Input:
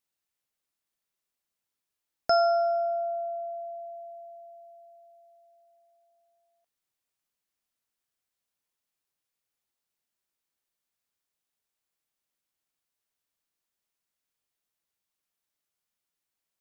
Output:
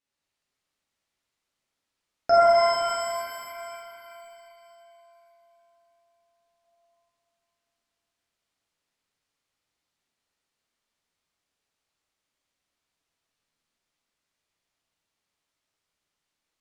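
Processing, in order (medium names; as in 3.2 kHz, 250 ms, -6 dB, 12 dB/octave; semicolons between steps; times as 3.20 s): distance through air 62 m; pitch-shifted reverb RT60 2.8 s, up +7 st, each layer -8 dB, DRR -8.5 dB; trim -1 dB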